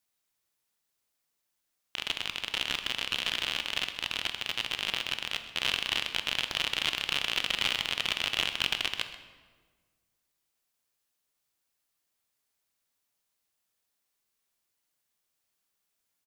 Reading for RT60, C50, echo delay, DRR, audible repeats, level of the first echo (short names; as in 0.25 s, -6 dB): 1.5 s, 9.5 dB, 0.129 s, 8.0 dB, 1, -16.5 dB